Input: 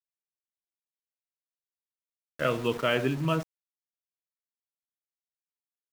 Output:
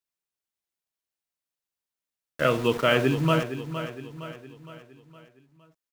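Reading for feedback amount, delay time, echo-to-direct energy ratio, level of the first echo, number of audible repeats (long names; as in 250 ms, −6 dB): 49%, 463 ms, −9.5 dB, −10.5 dB, 4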